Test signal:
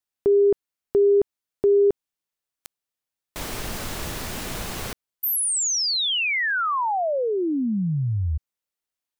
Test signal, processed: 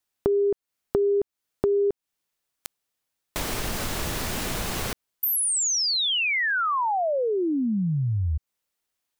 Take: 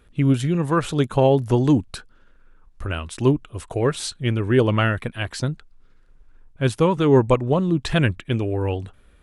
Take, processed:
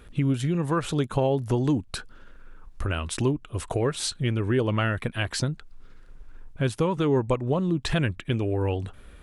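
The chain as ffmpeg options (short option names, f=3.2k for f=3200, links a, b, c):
-af "acompressor=threshold=-33dB:ratio=2.5:attack=10:release=394:detection=peak,volume=6.5dB"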